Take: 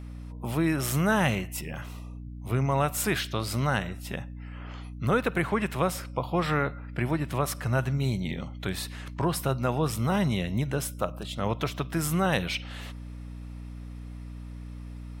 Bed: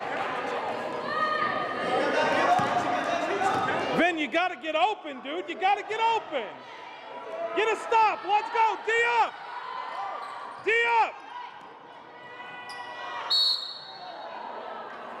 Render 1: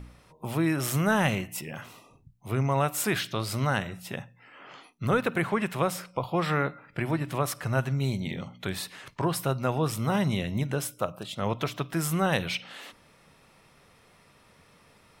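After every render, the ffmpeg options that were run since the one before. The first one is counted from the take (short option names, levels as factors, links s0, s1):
-af "bandreject=f=60:t=h:w=4,bandreject=f=120:t=h:w=4,bandreject=f=180:t=h:w=4,bandreject=f=240:t=h:w=4,bandreject=f=300:t=h:w=4"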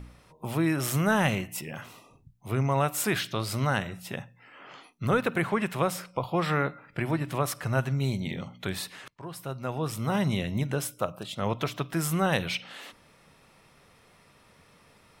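-filter_complex "[0:a]asplit=2[s0][s1];[s0]atrim=end=9.08,asetpts=PTS-STARTPTS,afade=t=out:st=9.076:d=0.004:c=hsin:silence=0.0794328[s2];[s1]atrim=start=9.08,asetpts=PTS-STARTPTS,afade=t=in:d=1.21:silence=0.0794328[s3];[s2][s3]concat=n=2:v=0:a=1"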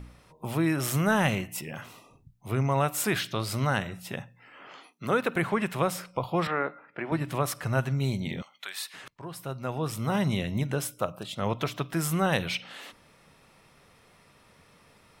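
-filter_complex "[0:a]asettb=1/sr,asplit=3[s0][s1][s2];[s0]atrim=end=4.684[s3];[s1]atrim=start=4.68:end=5.36,asetpts=PTS-STARTPTS,afade=t=in:d=0.004:c=qsin,afade=t=out:st=0.676:d=0.004:c=qsin,highpass=210[s4];[s2]atrim=start=5.356[s5];[s3][s4]acrossfade=d=0.004:c1=hsin:c2=qsin[s6];[s6][s5]acrossfade=d=0.004:c1=qsin:c2=hsin,asettb=1/sr,asplit=3[s7][s8][s9];[s7]atrim=end=6.474[s10];[s8]atrim=start=6.47:end=7.12,asetpts=PTS-STARTPTS,afade=t=in:d=0.004:c=qsin,afade=t=out:st=0.646:d=0.004:c=qsin,highpass=310,lowpass=2200[s11];[s9]atrim=start=7.116[s12];[s10][s11]acrossfade=d=0.004:c1=hsin:c2=qsin[s13];[s13][s12]acrossfade=d=0.004:c1=qsin:c2=hsin,asettb=1/sr,asplit=3[s14][s15][s16];[s14]atrim=end=8.424[s17];[s15]atrim=start=8.42:end=8.94,asetpts=PTS-STARTPTS,afade=t=in:d=0.004:c=qsin,afade=t=out:st=0.516:d=0.004:c=qsin,highpass=1200[s18];[s16]atrim=start=8.936[s19];[s17][s18]acrossfade=d=0.004:c1=hsin:c2=qsin[s20];[s20][s19]acrossfade=d=0.004:c1=qsin:c2=hsin"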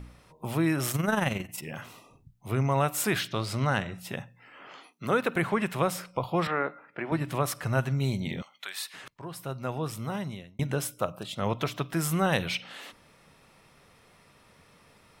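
-filter_complex "[0:a]asettb=1/sr,asplit=3[s0][s1][s2];[s0]atrim=end=0.914[s3];[s1]atrim=start=0.91:end=1.65,asetpts=PTS-STARTPTS,afade=t=in:d=0.004:c=qsin,afade=t=out:st=0.736:d=0.004:c=qsin,tremolo=f=22:d=0.621[s4];[s2]atrim=start=1.646[s5];[s3][s4]acrossfade=d=0.004:c1=hsin:c2=qsin[s6];[s6][s5]acrossfade=d=0.004:c1=qsin:c2=hsin,asettb=1/sr,asplit=3[s7][s8][s9];[s7]atrim=end=3.284[s10];[s8]atrim=start=3.28:end=3.98,asetpts=PTS-STARTPTS,afade=t=in:d=0.004:c=qsin,afade=t=out:st=0.696:d=0.004:c=qsin,adynamicsmooth=sensitivity=7:basefreq=7100[s11];[s9]atrim=start=3.976[s12];[s10][s11]acrossfade=d=0.004:c1=hsin:c2=qsin[s13];[s13][s12]acrossfade=d=0.004:c1=qsin:c2=hsin,asplit=2[s14][s15];[s14]atrim=end=10.59,asetpts=PTS-STARTPTS,afade=t=out:st=9.67:d=0.92[s16];[s15]atrim=start=10.59,asetpts=PTS-STARTPTS,afade=t=in:d=0.004:c=hsin[s17];[s16][s17]concat=n=2:v=0:a=1"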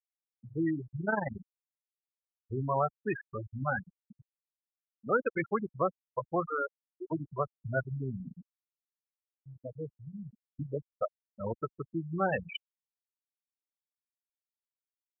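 -af "afftfilt=real='re*gte(hypot(re,im),0.158)':imag='im*gte(hypot(re,im),0.158)':win_size=1024:overlap=0.75,equalizer=f=140:w=0.66:g=-8.5"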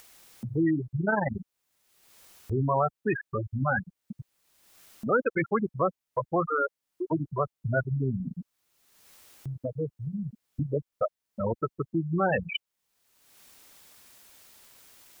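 -filter_complex "[0:a]asplit=2[s0][s1];[s1]alimiter=level_in=1.5:limit=0.0631:level=0:latency=1:release=15,volume=0.668,volume=1.41[s2];[s0][s2]amix=inputs=2:normalize=0,acompressor=mode=upward:threshold=0.0398:ratio=2.5"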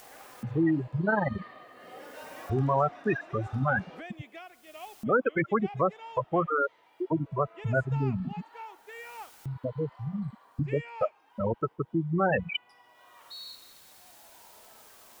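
-filter_complex "[1:a]volume=0.0944[s0];[0:a][s0]amix=inputs=2:normalize=0"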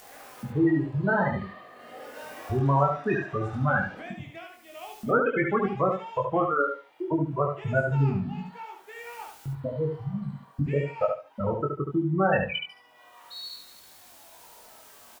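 -filter_complex "[0:a]asplit=2[s0][s1];[s1]adelay=21,volume=0.631[s2];[s0][s2]amix=inputs=2:normalize=0,asplit=2[s3][s4];[s4]aecho=0:1:72|144|216:0.562|0.118|0.0248[s5];[s3][s5]amix=inputs=2:normalize=0"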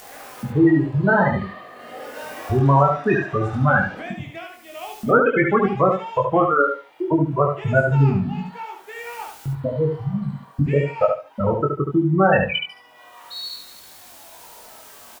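-af "volume=2.37,alimiter=limit=0.708:level=0:latency=1"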